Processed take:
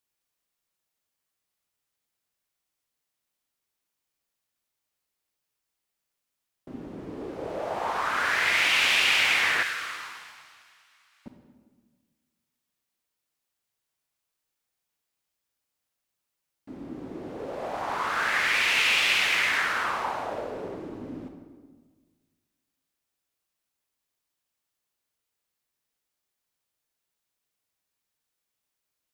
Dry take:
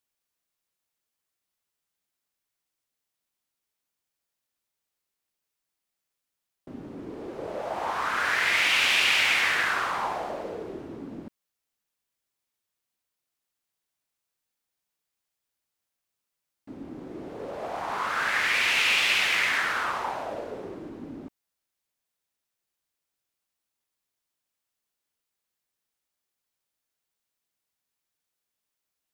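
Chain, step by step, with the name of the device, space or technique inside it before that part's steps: 9.63–11.26 Bessel high-pass 2200 Hz, order 6; compressed reverb return (on a send at -4.5 dB: reverb RT60 1.5 s, pre-delay 31 ms + compressor, threshold -29 dBFS, peak gain reduction 10.5 dB)

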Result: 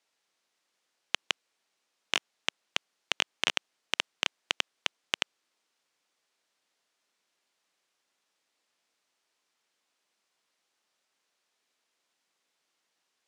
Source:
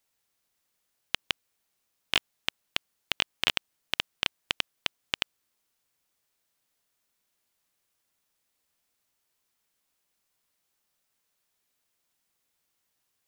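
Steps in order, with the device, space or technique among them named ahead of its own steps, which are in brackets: public-address speaker with an overloaded transformer (core saturation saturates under 1800 Hz; BPF 270–6300 Hz); gain +3.5 dB

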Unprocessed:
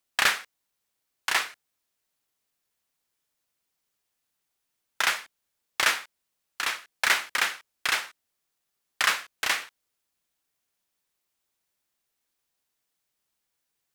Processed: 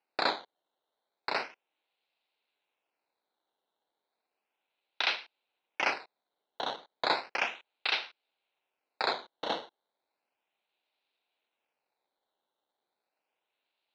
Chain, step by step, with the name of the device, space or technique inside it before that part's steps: circuit-bent sampling toy (decimation with a swept rate 12×, swing 100% 0.34 Hz; speaker cabinet 420–4200 Hz, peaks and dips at 810 Hz +3 dB, 1200 Hz -7 dB, 1800 Hz -7 dB, 2600 Hz +5 dB, 4000 Hz +8 dB); gain -4 dB

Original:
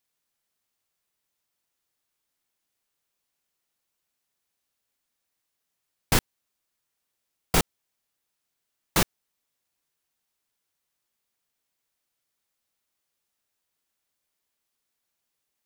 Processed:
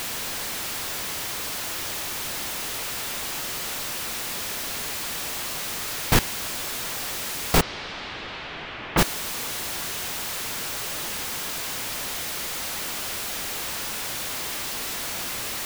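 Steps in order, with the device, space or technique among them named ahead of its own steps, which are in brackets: early CD player with a faulty converter (zero-crossing step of -24.5 dBFS; clock jitter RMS 0.029 ms); 7.6–8.97 LPF 4800 Hz -> 2900 Hz 24 dB/oct; gain +2 dB

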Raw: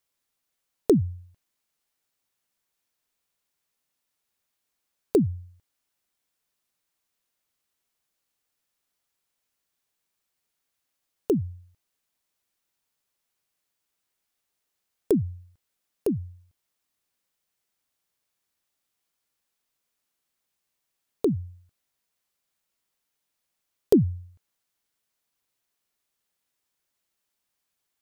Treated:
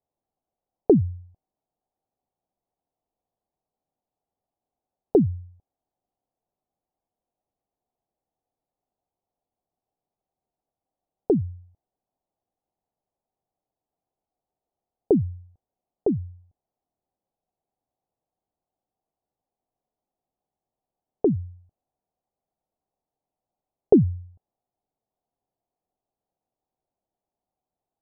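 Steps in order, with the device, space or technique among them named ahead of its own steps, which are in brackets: under water (LPF 810 Hz 24 dB/oct; bell 750 Hz +9 dB 0.37 oct); gain +2.5 dB

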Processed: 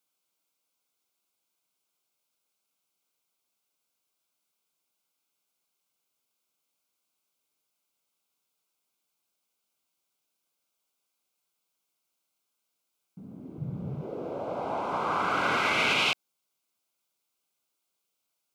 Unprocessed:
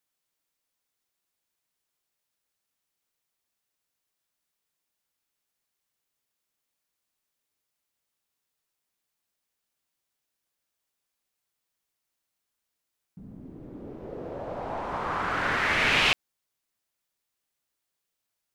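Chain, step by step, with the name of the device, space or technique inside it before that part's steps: PA system with an anti-feedback notch (HPF 150 Hz 12 dB/oct; Butterworth band-stop 1800 Hz, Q 3.7; limiter -18 dBFS, peak gain reduction 8.5 dB); 13.58–14.02 resonant low shelf 210 Hz +11.5 dB, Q 3; gain +2 dB

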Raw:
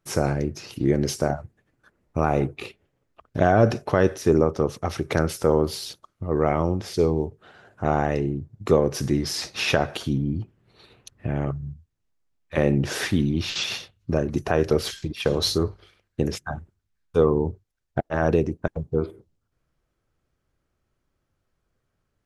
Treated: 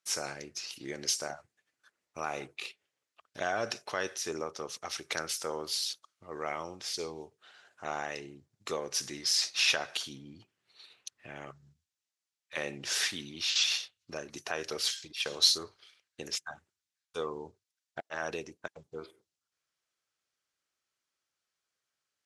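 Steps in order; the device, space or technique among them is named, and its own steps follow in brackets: piezo pickup straight into a mixer (LPF 6300 Hz 12 dB/oct; differentiator); gain +6.5 dB

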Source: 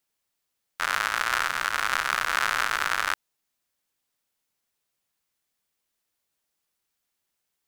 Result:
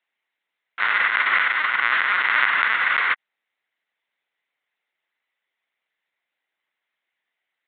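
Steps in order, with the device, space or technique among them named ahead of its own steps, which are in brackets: talking toy (LPC vocoder at 8 kHz; HPF 380 Hz 12 dB/oct; bell 2000 Hz +11 dB 0.43 oct); gain +2.5 dB

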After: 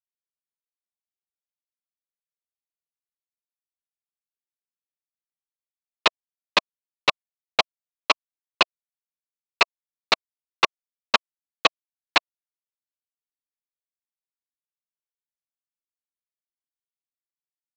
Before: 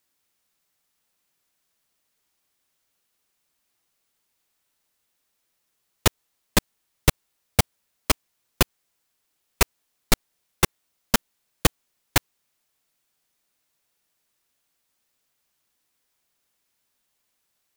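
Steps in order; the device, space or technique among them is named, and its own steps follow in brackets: hand-held game console (bit-crush 4-bit; speaker cabinet 470–4900 Hz, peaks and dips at 660 Hz +5 dB, 1100 Hz +9 dB, 2600 Hz +9 dB, 4000 Hz +7 dB)

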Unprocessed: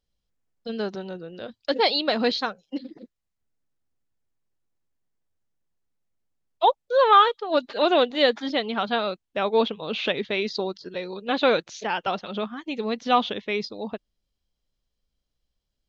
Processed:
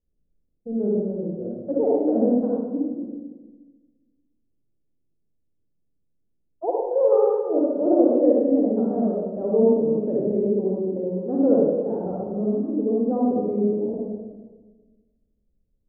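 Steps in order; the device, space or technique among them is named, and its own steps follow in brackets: next room (LPF 500 Hz 24 dB/oct; reverb RT60 1.3 s, pre-delay 40 ms, DRR -5 dB); gain +1 dB

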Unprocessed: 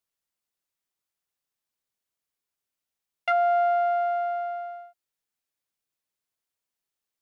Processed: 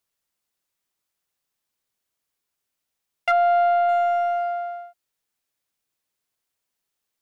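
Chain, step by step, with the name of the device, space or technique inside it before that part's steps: parallel distortion (in parallel at -9 dB: hard clip -27.5 dBFS, distortion -8 dB); 3.31–3.89 on the sum: air absorption 150 m; gain +3 dB

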